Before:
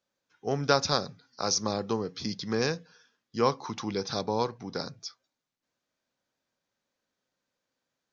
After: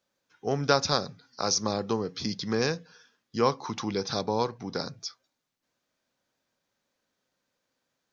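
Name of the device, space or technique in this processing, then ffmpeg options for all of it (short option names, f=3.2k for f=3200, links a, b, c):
parallel compression: -filter_complex "[0:a]asplit=2[a][b];[b]acompressor=threshold=-37dB:ratio=6,volume=-5dB[c];[a][c]amix=inputs=2:normalize=0"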